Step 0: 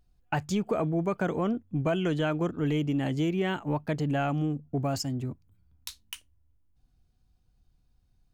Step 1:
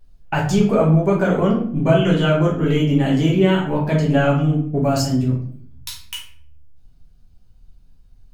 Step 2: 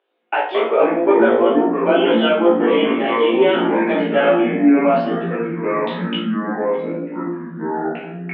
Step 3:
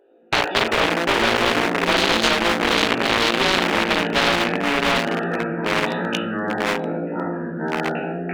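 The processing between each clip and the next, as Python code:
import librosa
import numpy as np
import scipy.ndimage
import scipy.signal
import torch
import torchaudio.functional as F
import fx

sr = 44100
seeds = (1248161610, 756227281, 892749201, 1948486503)

y1 = fx.room_shoebox(x, sr, seeds[0], volume_m3=74.0, walls='mixed', distance_m=1.2)
y1 = y1 * librosa.db_to_amplitude(5.0)
y2 = scipy.signal.sosfilt(scipy.signal.cheby1(5, 1.0, [330.0, 3500.0], 'bandpass', fs=sr, output='sos'), y1)
y2 = fx.echo_pitch(y2, sr, ms=113, semitones=-5, count=2, db_per_echo=-3.0)
y2 = fx.room_flutter(y2, sr, wall_m=3.0, rt60_s=0.23)
y2 = y2 * librosa.db_to_amplitude(2.0)
y3 = fx.wiener(y2, sr, points=41)
y3 = fx.spectral_comp(y3, sr, ratio=4.0)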